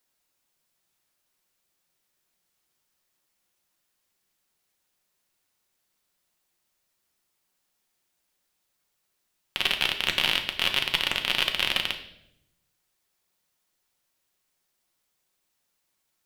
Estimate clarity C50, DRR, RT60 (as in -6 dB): 10.0 dB, 4.0 dB, 0.80 s